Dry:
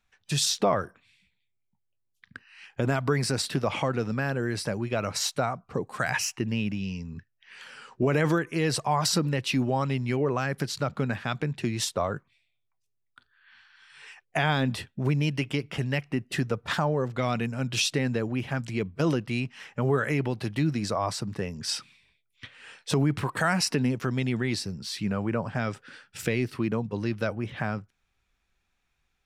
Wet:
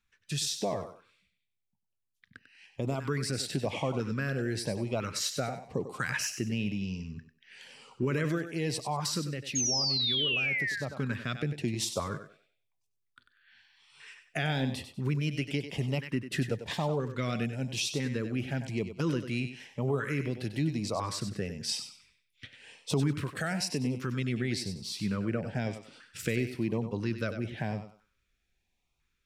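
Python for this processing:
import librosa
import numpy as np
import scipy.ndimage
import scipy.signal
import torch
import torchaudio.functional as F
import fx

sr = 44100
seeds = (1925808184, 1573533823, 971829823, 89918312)

y = fx.spec_paint(x, sr, seeds[0], shape='fall', start_s=9.55, length_s=1.29, low_hz=1500.0, high_hz=6700.0, level_db=-19.0)
y = fx.echo_thinned(y, sr, ms=96, feedback_pct=28, hz=270.0, wet_db=-9)
y = fx.filter_lfo_notch(y, sr, shape='saw_up', hz=1.0, low_hz=630.0, high_hz=1800.0, q=1.1)
y = fx.rider(y, sr, range_db=4, speed_s=0.5)
y = y * 10.0 ** (-6.5 / 20.0)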